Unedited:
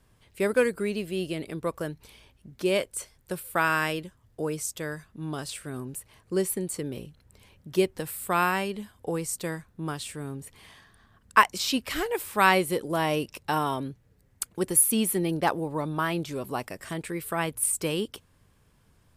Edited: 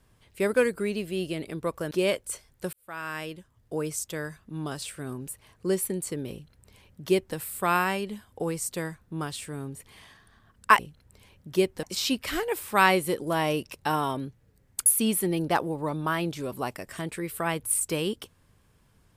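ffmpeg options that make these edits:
ffmpeg -i in.wav -filter_complex "[0:a]asplit=6[link_01][link_02][link_03][link_04][link_05][link_06];[link_01]atrim=end=1.912[link_07];[link_02]atrim=start=2.578:end=3.4,asetpts=PTS-STARTPTS,afade=type=out:start_time=0.818:duration=0.004:curve=hsin[link_08];[link_03]atrim=start=3.4:end=11.462,asetpts=PTS-STARTPTS,afade=type=in:duration=1.09[link_09];[link_04]atrim=start=6.988:end=8.032[link_10];[link_05]atrim=start=11.458:end=14.492[link_11];[link_06]atrim=start=14.778[link_12];[link_08][link_09]concat=n=2:v=0:a=1[link_13];[link_07][link_13]acrossfade=duration=0.004:curve1=hsin:curve2=hsin[link_14];[link_14][link_10]acrossfade=duration=0.004:curve1=hsin:curve2=hsin[link_15];[link_15][link_11]acrossfade=duration=0.004:curve1=hsin:curve2=hsin[link_16];[link_16][link_12]acrossfade=duration=0.004:curve1=hsin:curve2=hsin" out.wav

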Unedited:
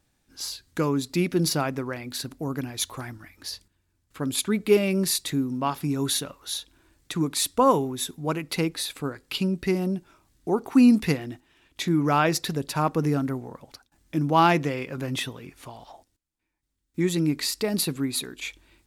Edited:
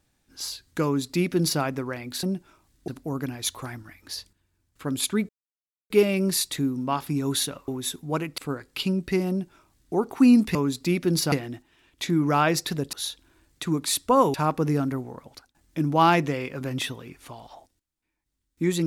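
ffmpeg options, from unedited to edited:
ffmpeg -i in.wav -filter_complex "[0:a]asplit=10[link_01][link_02][link_03][link_04][link_05][link_06][link_07][link_08][link_09][link_10];[link_01]atrim=end=2.232[link_11];[link_02]atrim=start=9.838:end=10.492[link_12];[link_03]atrim=start=2.228:end=4.64,asetpts=PTS-STARTPTS,afade=type=out:start_time=2.408:duration=0.004:curve=hsin,apad=pad_dur=0.61[link_13];[link_04]atrim=start=4.64:end=6.422,asetpts=PTS-STARTPTS,afade=type=in:duration=0.004:curve=hsin[link_14];[link_05]atrim=start=7.828:end=8.532[link_15];[link_06]atrim=start=8.928:end=11.102[link_16];[link_07]atrim=start=0.838:end=1.612[link_17];[link_08]atrim=start=11.098:end=12.712[link_18];[link_09]atrim=start=6.418:end=7.832[link_19];[link_10]atrim=start=12.708[link_20];[link_11][link_12]acrossfade=duration=0.004:curve1=hsin:curve2=hsin[link_21];[link_13][link_14]concat=n=2:v=0:a=1[link_22];[link_21][link_22]acrossfade=duration=0.004:curve1=hsin:curve2=hsin[link_23];[link_23][link_15]acrossfade=duration=0.004:curve1=hsin:curve2=hsin[link_24];[link_24][link_16]acrossfade=duration=0.004:curve1=hsin:curve2=hsin[link_25];[link_25][link_17]acrossfade=duration=0.004:curve1=hsin:curve2=hsin[link_26];[link_26][link_18]acrossfade=duration=0.004:curve1=hsin:curve2=hsin[link_27];[link_27][link_19]acrossfade=duration=0.004:curve1=hsin:curve2=hsin[link_28];[link_28][link_20]acrossfade=duration=0.004:curve1=hsin:curve2=hsin" out.wav

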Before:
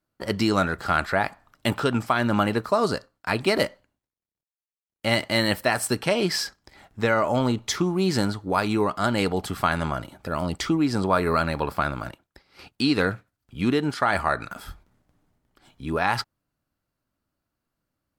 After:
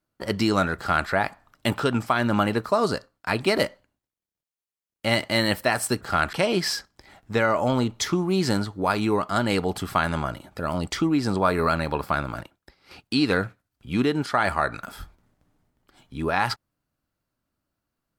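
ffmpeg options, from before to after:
ffmpeg -i in.wav -filter_complex "[0:a]asplit=3[link_01][link_02][link_03];[link_01]atrim=end=6.012[link_04];[link_02]atrim=start=0.768:end=1.092[link_05];[link_03]atrim=start=6.008[link_06];[link_04][link_05]acrossfade=duration=0.004:curve1=hsin:curve2=hsin[link_07];[link_07][link_06]acrossfade=duration=0.004:curve1=hsin:curve2=hsin" out.wav

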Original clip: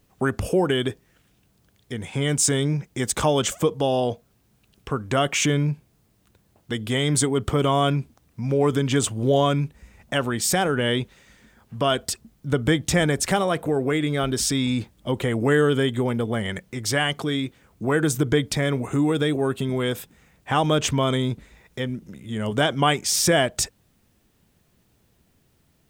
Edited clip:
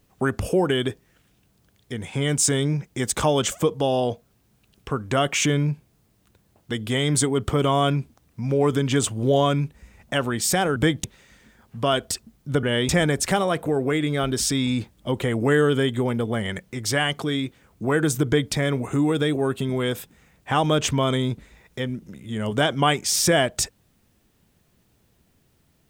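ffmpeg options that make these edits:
ffmpeg -i in.wav -filter_complex "[0:a]asplit=5[link_01][link_02][link_03][link_04][link_05];[link_01]atrim=end=10.762[link_06];[link_02]atrim=start=12.608:end=12.892[link_07];[link_03]atrim=start=11.018:end=12.612[link_08];[link_04]atrim=start=10.758:end=11.022[link_09];[link_05]atrim=start=12.888[link_10];[link_06][link_07]acrossfade=duration=0.004:curve1=hsin:curve2=hsin[link_11];[link_11][link_08]acrossfade=duration=0.004:curve1=hsin:curve2=hsin[link_12];[link_12][link_09]acrossfade=duration=0.004:curve1=hsin:curve2=hsin[link_13];[link_13][link_10]acrossfade=duration=0.004:curve1=hsin:curve2=hsin" out.wav

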